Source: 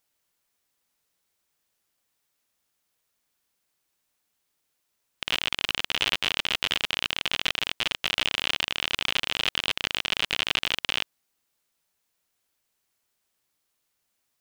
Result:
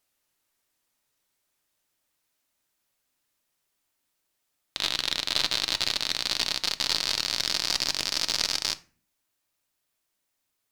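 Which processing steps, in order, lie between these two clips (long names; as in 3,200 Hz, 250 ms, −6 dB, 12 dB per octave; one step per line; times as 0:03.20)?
gliding playback speed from 90% → 179%
convolution reverb RT60 0.40 s, pre-delay 3 ms, DRR 9.5 dB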